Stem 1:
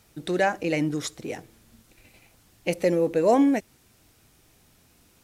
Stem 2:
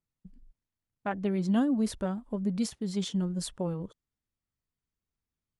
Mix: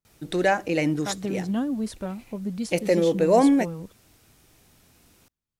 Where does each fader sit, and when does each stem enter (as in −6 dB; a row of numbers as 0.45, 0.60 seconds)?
+1.5, −0.5 decibels; 0.05, 0.00 seconds